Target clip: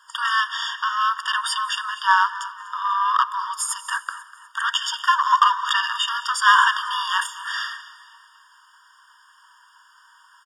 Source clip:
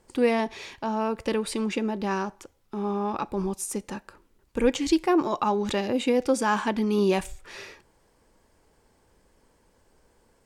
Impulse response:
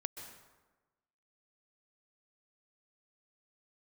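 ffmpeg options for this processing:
-filter_complex "[0:a]aemphasis=mode=reproduction:type=50kf,acrossover=split=510|2400[s0][s1][s2];[s2]alimiter=level_in=2.66:limit=0.0631:level=0:latency=1:release=74,volume=0.376[s3];[s0][s1][s3]amix=inputs=3:normalize=0,acontrast=33,afreqshift=-28,asplit=2[s4][s5];[s5]highpass=f=720:p=1,volume=7.94,asoftclip=type=tanh:threshold=0.531[s6];[s4][s6]amix=inputs=2:normalize=0,lowpass=f=7800:p=1,volume=0.501,asplit=5[s7][s8][s9][s10][s11];[s8]adelay=246,afreqshift=51,volume=0.119[s12];[s9]adelay=492,afreqshift=102,volume=0.0537[s13];[s10]adelay=738,afreqshift=153,volume=0.024[s14];[s11]adelay=984,afreqshift=204,volume=0.0108[s15];[s7][s12][s13][s14][s15]amix=inputs=5:normalize=0,asplit=2[s16][s17];[1:a]atrim=start_sample=2205,asetrate=32193,aresample=44100,highshelf=f=7900:g=11.5[s18];[s17][s18]afir=irnorm=-1:irlink=0,volume=0.251[s19];[s16][s19]amix=inputs=2:normalize=0,afftfilt=real='re*eq(mod(floor(b*sr/1024/930),2),1)':imag='im*eq(mod(floor(b*sr/1024/930),2),1)':win_size=1024:overlap=0.75,volume=1.26"

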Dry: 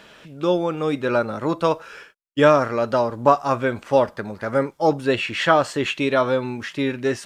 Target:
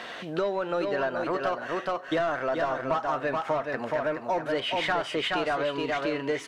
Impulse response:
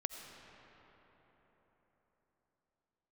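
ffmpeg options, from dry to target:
-filter_complex "[0:a]asplit=2[s0][s1];[s1]highpass=f=720:p=1,volume=8.91,asoftclip=type=tanh:threshold=0.841[s2];[s0][s2]amix=inputs=2:normalize=0,lowpass=f=1400:p=1,volume=0.501,asplit=2[s3][s4];[s4]aecho=0:1:473:0.531[s5];[s3][s5]amix=inputs=2:normalize=0,asetrate=49392,aresample=44100,acompressor=threshold=0.0398:ratio=4,asplit=2[s6][s7];[s7]aecho=0:1:630:0.0944[s8];[s6][s8]amix=inputs=2:normalize=0"

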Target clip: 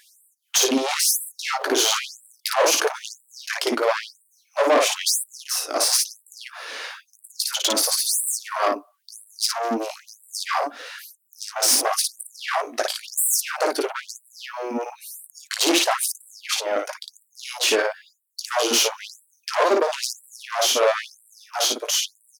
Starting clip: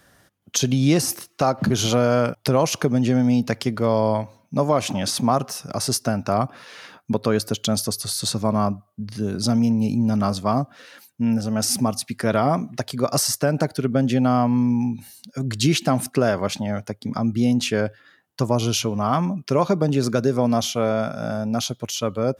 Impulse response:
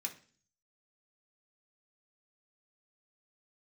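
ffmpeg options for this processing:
-af "aecho=1:1:18|56:0.447|0.668,aeval=exprs='(tanh(11.2*val(0)+0.55)-tanh(0.55))/11.2':c=same,afftfilt=real='re*gte(b*sr/1024,250*pow(7700/250,0.5+0.5*sin(2*PI*1*pts/sr)))':imag='im*gte(b*sr/1024,250*pow(7700/250,0.5+0.5*sin(2*PI*1*pts/sr)))':win_size=1024:overlap=0.75,volume=2.66"

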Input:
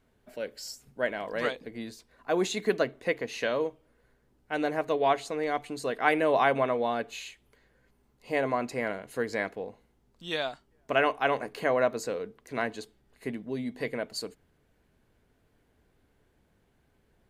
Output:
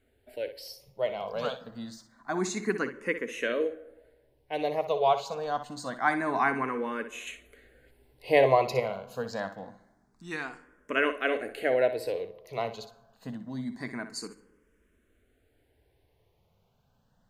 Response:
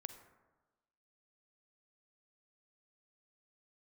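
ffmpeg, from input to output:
-filter_complex "[0:a]asettb=1/sr,asplit=3[s0][s1][s2];[s0]atrim=end=7.274[s3];[s1]atrim=start=7.27:end=8.8,asetpts=PTS-STARTPTS,afade=t=in:d=0.004:c=qsin,afade=t=out:st=1.526:d=0.004:c=qsin,acontrast=85[s4];[s2]atrim=start=8.796[s5];[s3][s4]acrossfade=d=0.004:c1=hsin:c2=qsin[s6];[s6][s5]acrossfade=d=0.004:c1=qsin:c2=hsin,asplit=2[s7][s8];[1:a]atrim=start_sample=2205,adelay=61[s9];[s8][s9]afir=irnorm=-1:irlink=0,volume=0.473[s10];[s7][s10]amix=inputs=2:normalize=0,asplit=2[s11][s12];[s12]afreqshift=0.26[s13];[s11][s13]amix=inputs=2:normalize=1,volume=1.19"

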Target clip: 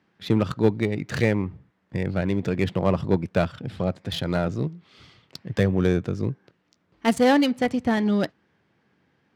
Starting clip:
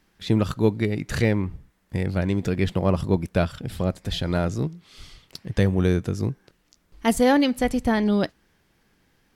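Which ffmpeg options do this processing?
-af "aeval=exprs='0.501*(cos(1*acos(clip(val(0)/0.501,-1,1)))-cos(1*PI/2))+0.0316*(cos(6*acos(clip(val(0)/0.501,-1,1)))-cos(6*PI/2))':c=same,highpass=f=93:w=0.5412,highpass=f=93:w=1.3066,adynamicsmooth=sensitivity=5.5:basefreq=3400"

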